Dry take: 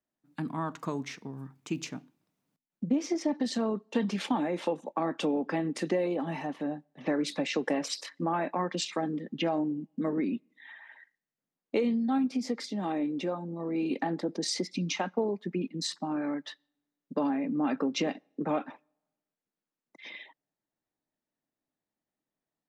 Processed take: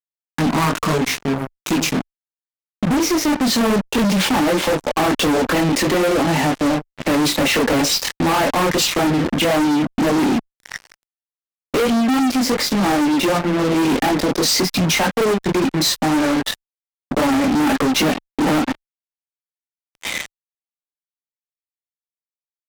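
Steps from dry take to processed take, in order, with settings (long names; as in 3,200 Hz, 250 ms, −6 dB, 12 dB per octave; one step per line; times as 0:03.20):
multi-voice chorus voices 6, 1.1 Hz, delay 23 ms, depth 4.1 ms
fuzz pedal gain 47 dB, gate −48 dBFS
harmonic generator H 3 −15 dB, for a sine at −10.5 dBFS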